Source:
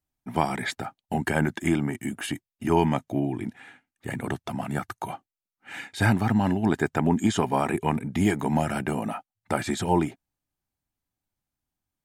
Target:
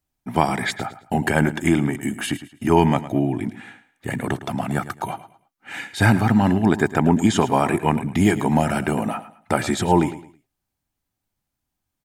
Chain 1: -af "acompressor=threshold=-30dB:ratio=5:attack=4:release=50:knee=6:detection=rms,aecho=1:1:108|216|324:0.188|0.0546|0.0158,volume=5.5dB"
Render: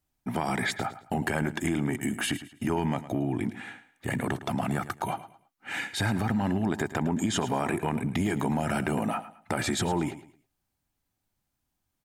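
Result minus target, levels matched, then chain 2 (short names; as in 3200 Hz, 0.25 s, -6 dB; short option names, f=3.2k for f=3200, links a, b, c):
compressor: peak gain reduction +14.5 dB
-af "aecho=1:1:108|216|324:0.188|0.0546|0.0158,volume=5.5dB"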